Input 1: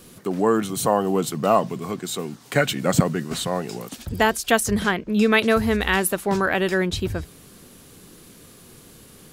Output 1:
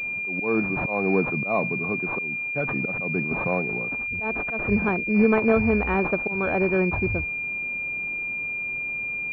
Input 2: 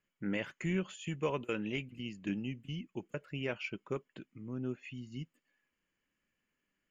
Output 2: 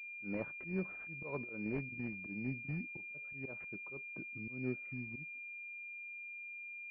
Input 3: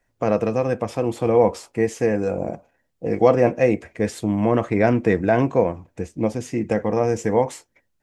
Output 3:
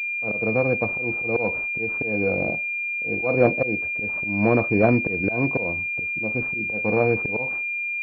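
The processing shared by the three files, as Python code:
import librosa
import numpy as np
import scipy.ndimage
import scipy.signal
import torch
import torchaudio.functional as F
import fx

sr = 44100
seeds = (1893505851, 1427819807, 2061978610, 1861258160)

y = fx.auto_swell(x, sr, attack_ms=202.0)
y = fx.pwm(y, sr, carrier_hz=2400.0)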